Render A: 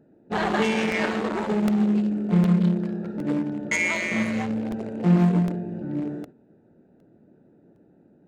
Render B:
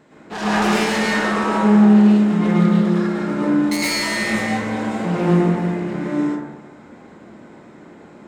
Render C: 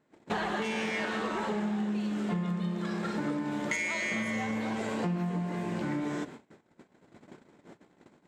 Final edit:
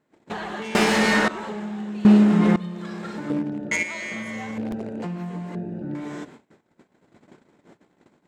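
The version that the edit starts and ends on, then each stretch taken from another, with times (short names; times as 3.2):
C
0.75–1.28 from B
2.05–2.56 from B
3.3–3.83 from A
4.58–5.02 from A
5.55–5.95 from A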